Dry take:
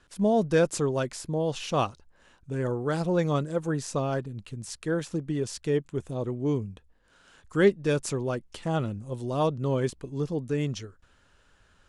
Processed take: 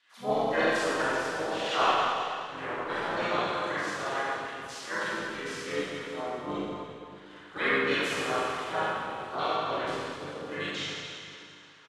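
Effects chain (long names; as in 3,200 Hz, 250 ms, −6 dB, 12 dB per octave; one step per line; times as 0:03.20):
auto-filter band-pass saw down 6.6 Hz 970–3,500 Hz
four-comb reverb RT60 2.4 s, combs from 27 ms, DRR −10 dB
pitch-shifted copies added −7 semitones −5 dB, +3 semitones −3 dB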